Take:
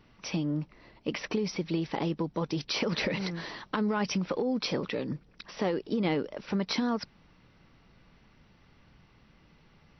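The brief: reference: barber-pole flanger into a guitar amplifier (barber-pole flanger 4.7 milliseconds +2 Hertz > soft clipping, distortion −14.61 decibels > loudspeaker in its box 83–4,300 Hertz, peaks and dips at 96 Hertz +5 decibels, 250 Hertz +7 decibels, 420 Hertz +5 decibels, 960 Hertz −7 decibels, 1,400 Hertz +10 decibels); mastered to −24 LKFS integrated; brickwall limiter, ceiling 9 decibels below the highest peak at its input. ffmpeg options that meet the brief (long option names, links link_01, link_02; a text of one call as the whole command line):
ffmpeg -i in.wav -filter_complex "[0:a]alimiter=level_in=2.5dB:limit=-24dB:level=0:latency=1,volume=-2.5dB,asplit=2[link_01][link_02];[link_02]adelay=4.7,afreqshift=2[link_03];[link_01][link_03]amix=inputs=2:normalize=1,asoftclip=threshold=-33dB,highpass=83,equalizer=frequency=96:width_type=q:width=4:gain=5,equalizer=frequency=250:width_type=q:width=4:gain=7,equalizer=frequency=420:width_type=q:width=4:gain=5,equalizer=frequency=960:width_type=q:width=4:gain=-7,equalizer=frequency=1400:width_type=q:width=4:gain=10,lowpass=frequency=4300:width=0.5412,lowpass=frequency=4300:width=1.3066,volume=14.5dB" out.wav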